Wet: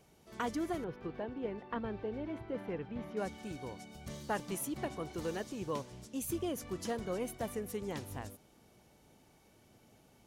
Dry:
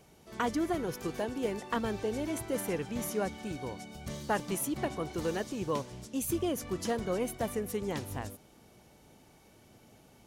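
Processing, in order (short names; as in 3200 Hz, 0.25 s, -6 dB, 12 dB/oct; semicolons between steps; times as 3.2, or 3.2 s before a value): 0.84–3.17 air absorption 380 m; gain -5 dB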